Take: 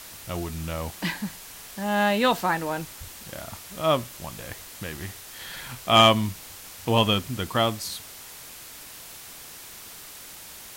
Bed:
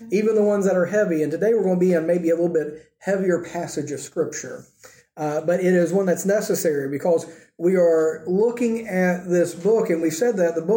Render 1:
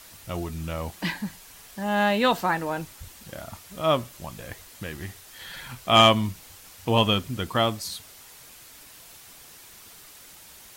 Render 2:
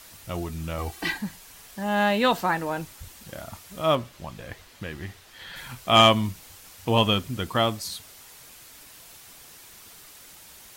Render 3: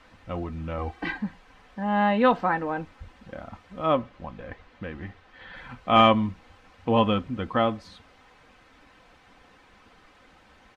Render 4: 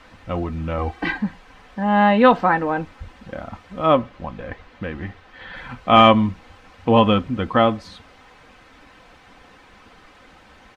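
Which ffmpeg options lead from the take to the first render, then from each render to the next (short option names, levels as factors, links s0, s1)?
-af "afftdn=nr=6:nf=-43"
-filter_complex "[0:a]asettb=1/sr,asplit=3[s0][s1][s2];[s0]atrim=end=0.784[s3];[s1]atrim=start=0.78:end=1.18,asetpts=PTS-STARTPTS,afade=t=in:d=0.004:c=qsin,afade=t=out:st=0.396:d=0.004:c=qsin,aecho=1:1:2.6:0.8,atrim=end_sample=17640[s4];[s2]atrim=start=1.176[s5];[s3][s4]acrossfade=d=0.004:c1=hsin:c2=qsin[s6];[s6][s5]acrossfade=d=0.004:c1=qsin:c2=hsin,asettb=1/sr,asplit=3[s7][s8][s9];[s7]atrim=end=3.954[s10];[s8]atrim=start=3.95:end=5.56,asetpts=PTS-STARTPTS,afade=t=in:d=0.004:c=qsin,afade=t=out:st=1.606:d=0.004:c=qsin,acrossover=split=5100[s11][s12];[s12]acompressor=threshold=0.00158:ratio=4:attack=1:release=60[s13];[s11][s13]amix=inputs=2:normalize=0[s14];[s9]atrim=start=5.556[s15];[s10][s14]acrossfade=d=0.004:c1=hsin:c2=qsin[s16];[s16][s15]acrossfade=d=0.004:c1=qsin:c2=hsin"
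-af "lowpass=1900,aecho=1:1:3.9:0.44"
-af "volume=2.24,alimiter=limit=0.794:level=0:latency=1"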